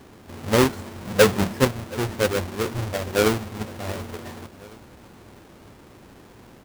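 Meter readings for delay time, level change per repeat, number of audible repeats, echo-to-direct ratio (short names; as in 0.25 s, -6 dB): 0.725 s, -5.0 dB, 2, -20.5 dB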